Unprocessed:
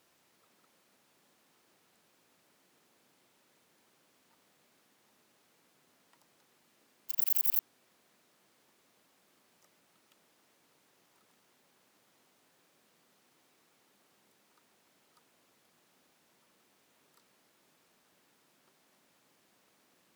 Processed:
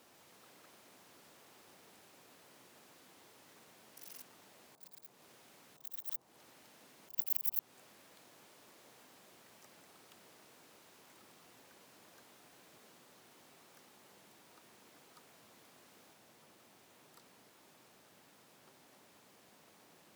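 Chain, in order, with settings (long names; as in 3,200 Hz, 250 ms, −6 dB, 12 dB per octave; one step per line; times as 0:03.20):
delay with pitch and tempo change per echo 141 ms, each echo +4 semitones, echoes 3
volume swells 286 ms
noise in a band 98–980 Hz −76 dBFS
level +5 dB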